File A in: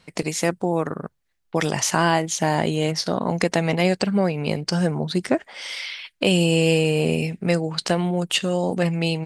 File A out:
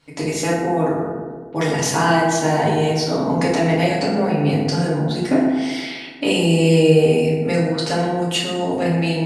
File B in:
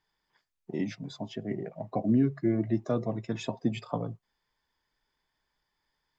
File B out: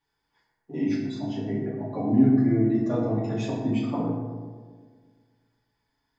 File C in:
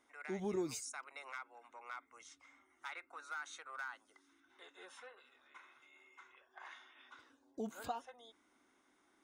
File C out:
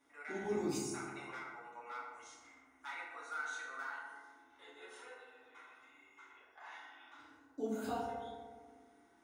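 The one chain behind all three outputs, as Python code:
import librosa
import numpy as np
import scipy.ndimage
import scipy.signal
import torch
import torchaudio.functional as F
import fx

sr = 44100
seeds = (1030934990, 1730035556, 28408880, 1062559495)

y = fx.echo_filtered(x, sr, ms=122, feedback_pct=67, hz=1500.0, wet_db=-7)
y = fx.rev_fdn(y, sr, rt60_s=1.0, lf_ratio=1.5, hf_ratio=0.6, size_ms=21.0, drr_db=-7.5)
y = y * 10.0 ** (-6.0 / 20.0)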